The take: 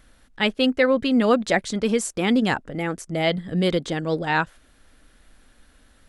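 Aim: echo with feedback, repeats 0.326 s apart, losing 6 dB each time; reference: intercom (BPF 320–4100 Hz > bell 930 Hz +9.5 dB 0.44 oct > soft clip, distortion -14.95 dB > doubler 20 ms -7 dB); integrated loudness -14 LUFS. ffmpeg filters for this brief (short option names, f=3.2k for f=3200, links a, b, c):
-filter_complex "[0:a]highpass=320,lowpass=4.1k,equalizer=f=930:t=o:w=0.44:g=9.5,aecho=1:1:326|652|978|1304|1630|1956:0.501|0.251|0.125|0.0626|0.0313|0.0157,asoftclip=threshold=-12.5dB,asplit=2[a][b];[b]adelay=20,volume=-7dB[c];[a][c]amix=inputs=2:normalize=0,volume=9.5dB"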